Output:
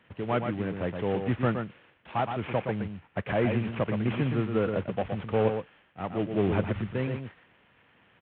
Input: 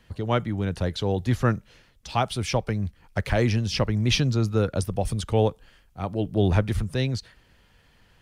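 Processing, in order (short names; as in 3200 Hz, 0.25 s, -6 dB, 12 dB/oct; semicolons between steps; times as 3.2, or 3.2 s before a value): CVSD 16 kbps; HPF 150 Hz 12 dB/oct; echo 0.119 s -6.5 dB; gain -1.5 dB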